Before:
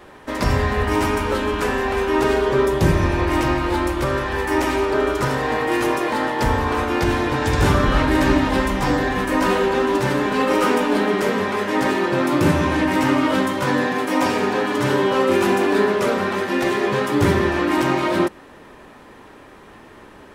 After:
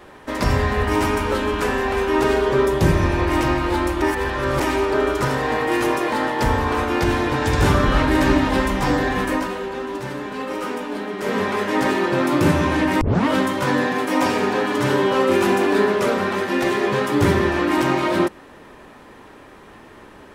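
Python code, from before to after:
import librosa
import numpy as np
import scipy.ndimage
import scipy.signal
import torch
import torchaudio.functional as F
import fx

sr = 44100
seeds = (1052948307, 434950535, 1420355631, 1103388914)

y = fx.edit(x, sr, fx.reverse_span(start_s=4.02, length_s=0.58),
    fx.fade_down_up(start_s=9.29, length_s=2.08, db=-9.0, fade_s=0.19),
    fx.tape_start(start_s=13.01, length_s=0.26), tone=tone)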